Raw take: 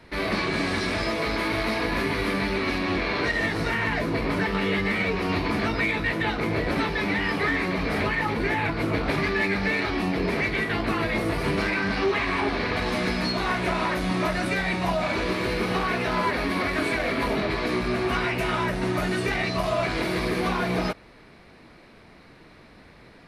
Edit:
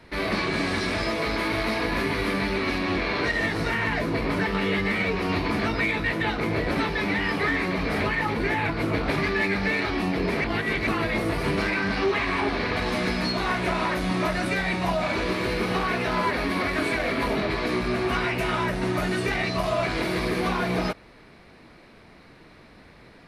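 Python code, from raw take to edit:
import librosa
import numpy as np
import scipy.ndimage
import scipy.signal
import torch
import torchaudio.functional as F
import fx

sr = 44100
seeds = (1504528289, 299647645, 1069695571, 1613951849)

y = fx.edit(x, sr, fx.reverse_span(start_s=10.44, length_s=0.43), tone=tone)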